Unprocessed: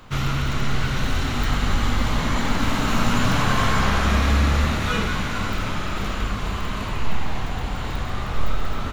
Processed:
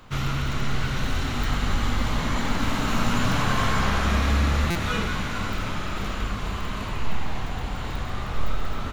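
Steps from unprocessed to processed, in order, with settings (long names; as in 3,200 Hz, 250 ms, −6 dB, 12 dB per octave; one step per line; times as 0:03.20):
buffer that repeats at 0:04.70, samples 256, times 8
level −3 dB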